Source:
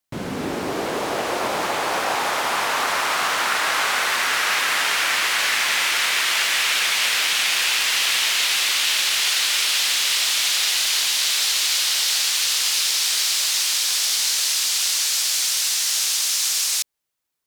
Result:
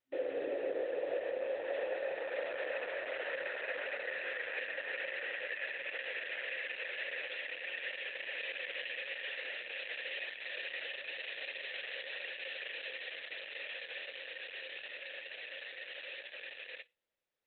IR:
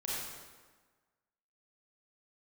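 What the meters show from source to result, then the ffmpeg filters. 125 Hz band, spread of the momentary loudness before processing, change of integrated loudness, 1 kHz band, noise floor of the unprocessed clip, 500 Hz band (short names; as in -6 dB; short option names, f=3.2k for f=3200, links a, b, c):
n/a, 5 LU, -21.0 dB, -26.0 dB, -29 dBFS, -7.0 dB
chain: -filter_complex "[0:a]asplit=3[a][b][c];[a]bandpass=f=530:t=q:w=8,volume=0dB[d];[b]bandpass=f=1.84k:t=q:w=8,volume=-6dB[e];[c]bandpass=f=2.48k:t=q:w=8,volume=-9dB[f];[d][e][f]amix=inputs=3:normalize=0,equalizer=f=490:w=0.34:g=7,alimiter=level_in=2.5dB:limit=-24dB:level=0:latency=1:release=372,volume=-2.5dB,acrossover=split=3500[g][h];[h]acompressor=threshold=-57dB:ratio=8[i];[g][i]amix=inputs=2:normalize=0,flanger=delay=5.4:depth=7.5:regen=-79:speed=0.23:shape=triangular,afftfilt=real='re*between(b*sr/4096,260,6100)':imag='im*between(b*sr/4096,260,6100)':win_size=4096:overlap=0.75,volume=4dB" -ar 48000 -c:a libopus -b:a 8k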